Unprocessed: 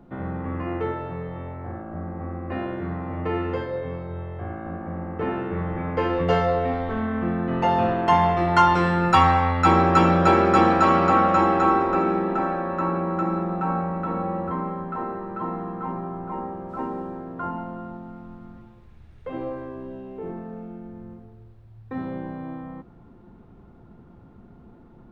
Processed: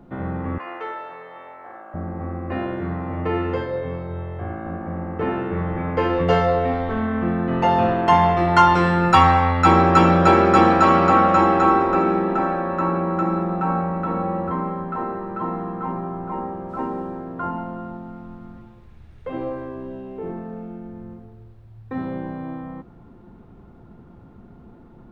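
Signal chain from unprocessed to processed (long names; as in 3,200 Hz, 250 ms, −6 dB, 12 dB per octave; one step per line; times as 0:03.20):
0:00.58–0:01.94: high-pass filter 750 Hz 12 dB per octave
level +3 dB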